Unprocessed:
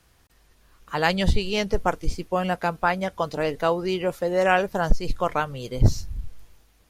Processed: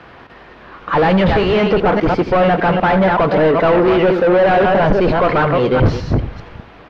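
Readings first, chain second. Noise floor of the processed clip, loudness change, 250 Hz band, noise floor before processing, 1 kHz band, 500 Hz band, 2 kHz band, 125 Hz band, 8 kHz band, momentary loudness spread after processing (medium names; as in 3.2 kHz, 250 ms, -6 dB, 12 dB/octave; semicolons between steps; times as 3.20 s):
-41 dBFS, +11.0 dB, +13.5 dB, -60 dBFS, +10.5 dB, +12.5 dB, +8.5 dB, +9.0 dB, no reading, 4 LU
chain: chunks repeated in reverse 200 ms, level -9.5 dB; peaking EQ 210 Hz +3 dB 2.5 oct; overdrive pedal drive 37 dB, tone 1.6 kHz, clips at -3.5 dBFS; distance through air 320 m; on a send: delay 84 ms -14 dB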